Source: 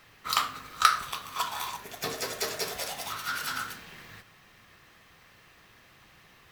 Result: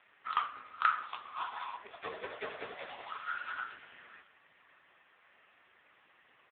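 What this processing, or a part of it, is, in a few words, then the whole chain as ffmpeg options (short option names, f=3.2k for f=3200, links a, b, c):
satellite phone: -af "highpass=360,lowpass=3.3k,aecho=1:1:526:0.1,volume=-1.5dB" -ar 8000 -c:a libopencore_amrnb -b:a 5900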